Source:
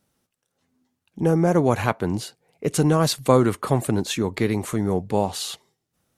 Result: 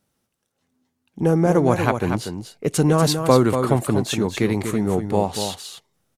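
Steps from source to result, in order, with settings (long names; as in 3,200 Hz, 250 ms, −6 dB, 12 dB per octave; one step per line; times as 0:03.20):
in parallel at −9.5 dB: slack as between gear wheels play −29 dBFS
on the sum: single-tap delay 240 ms −7.5 dB
level −1 dB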